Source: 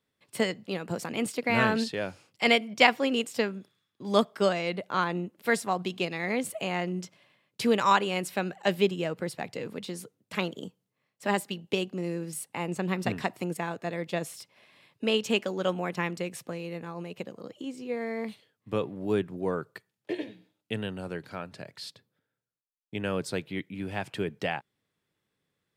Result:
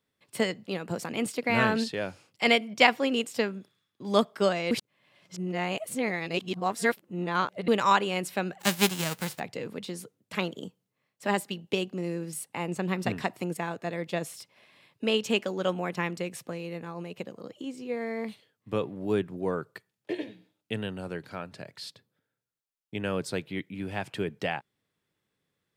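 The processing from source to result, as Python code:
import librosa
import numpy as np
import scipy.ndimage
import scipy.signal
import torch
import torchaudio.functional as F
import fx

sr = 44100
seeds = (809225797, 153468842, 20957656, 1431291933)

y = fx.envelope_flatten(x, sr, power=0.3, at=(8.59, 9.38), fade=0.02)
y = fx.edit(y, sr, fx.reverse_span(start_s=4.71, length_s=2.97), tone=tone)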